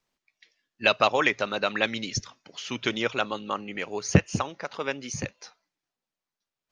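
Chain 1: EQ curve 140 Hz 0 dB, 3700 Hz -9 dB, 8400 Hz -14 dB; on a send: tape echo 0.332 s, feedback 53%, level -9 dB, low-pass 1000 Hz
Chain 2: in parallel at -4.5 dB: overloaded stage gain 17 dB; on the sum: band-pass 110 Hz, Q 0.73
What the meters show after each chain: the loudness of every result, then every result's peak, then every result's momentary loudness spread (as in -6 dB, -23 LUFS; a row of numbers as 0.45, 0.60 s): -31.5, -33.0 LUFS; -5.0, -5.0 dBFS; 14, 15 LU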